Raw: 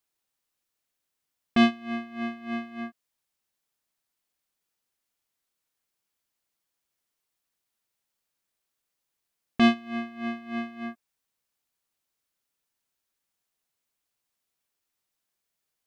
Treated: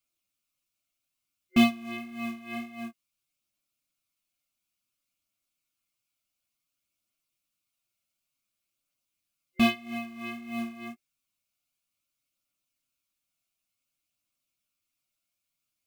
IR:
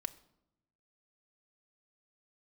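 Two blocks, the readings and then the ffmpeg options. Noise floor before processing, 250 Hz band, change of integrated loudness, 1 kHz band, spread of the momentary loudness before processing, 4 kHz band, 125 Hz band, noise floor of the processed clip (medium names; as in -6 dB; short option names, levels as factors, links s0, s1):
-83 dBFS, -2.0 dB, -2.0 dB, -4.0 dB, 16 LU, -0.5 dB, -0.5 dB, -85 dBFS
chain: -af "aphaser=in_gain=1:out_gain=1:delay=1.5:decay=0.21:speed=0.56:type=triangular,equalizer=f=870:t=o:w=0.35:g=-14,flanger=delay=7:depth=3.6:regen=-10:speed=1.8:shape=sinusoidal,acrusher=bits=5:mode=log:mix=0:aa=0.000001,superequalizer=7b=0.251:11b=0.355:12b=1.41,volume=1.26"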